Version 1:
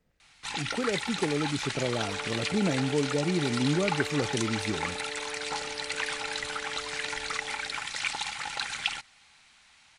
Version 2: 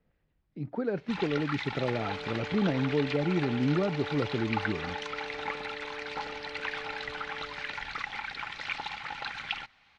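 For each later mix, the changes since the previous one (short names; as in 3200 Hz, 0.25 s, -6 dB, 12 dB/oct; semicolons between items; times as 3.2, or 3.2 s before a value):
first sound: entry +0.65 s; master: add air absorption 260 m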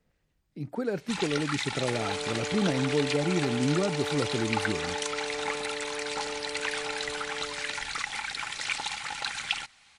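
second sound +5.5 dB; master: remove air absorption 260 m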